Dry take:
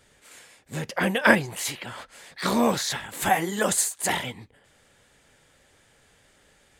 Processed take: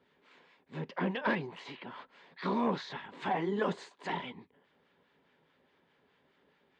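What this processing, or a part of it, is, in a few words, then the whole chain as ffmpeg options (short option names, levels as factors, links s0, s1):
guitar amplifier with harmonic tremolo: -filter_complex "[0:a]acrossover=split=1000[s0][s1];[s0]aeval=exprs='val(0)*(1-0.5/2+0.5/2*cos(2*PI*4.8*n/s))':c=same[s2];[s1]aeval=exprs='val(0)*(1-0.5/2-0.5/2*cos(2*PI*4.8*n/s))':c=same[s3];[s2][s3]amix=inputs=2:normalize=0,asoftclip=type=tanh:threshold=0.126,highpass=110,equalizer=f=110:t=q:w=4:g=-8,equalizer=f=170:t=q:w=4:g=7,equalizer=f=260:t=q:w=4:g=7,equalizer=f=400:t=q:w=4:g=8,equalizer=f=990:t=q:w=4:g=9,lowpass=f=3900:w=0.5412,lowpass=f=3900:w=1.3066,asettb=1/sr,asplit=3[s4][s5][s6];[s4]atrim=end=3.344[s7];[s5]atrim=start=3.34:end=4.06,asetpts=PTS-STARTPTS,afade=t=in:d=0.004:c=qsin,afade=t=out:st=0.716:d=0.004:c=qsin,equalizer=f=390:w=0.64:g=5[s8];[s6]atrim=start=4.056[s9];[s7][s8]acrossfade=d=0.004:c1=hsin:c2=qsin[s10];[s10][s9]acrossfade=d=0.004:c1=qsin:c2=hsin,volume=0.355"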